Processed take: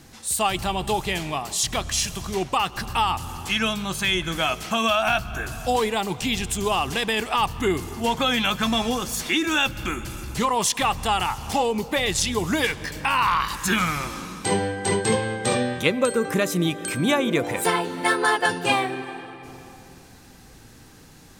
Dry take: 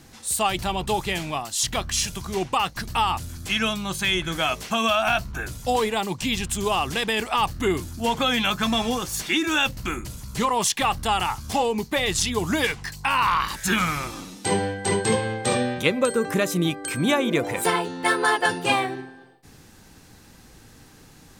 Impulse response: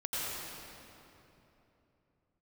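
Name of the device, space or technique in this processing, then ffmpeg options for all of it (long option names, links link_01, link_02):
ducked reverb: -filter_complex "[0:a]asplit=3[link_01][link_02][link_03];[1:a]atrim=start_sample=2205[link_04];[link_02][link_04]afir=irnorm=-1:irlink=0[link_05];[link_03]apad=whole_len=943363[link_06];[link_05][link_06]sidechaincompress=threshold=-30dB:ratio=4:attack=7.1:release=252,volume=-16dB[link_07];[link_01][link_07]amix=inputs=2:normalize=0"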